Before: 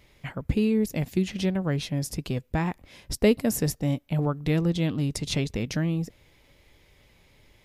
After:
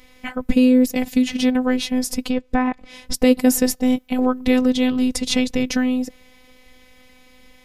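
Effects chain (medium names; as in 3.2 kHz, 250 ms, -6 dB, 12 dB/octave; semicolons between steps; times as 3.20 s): 2.25–3.14 s: low-pass that closes with the level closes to 1.9 kHz, closed at -21.5 dBFS; robot voice 254 Hz; loudness maximiser +12 dB; trim -1 dB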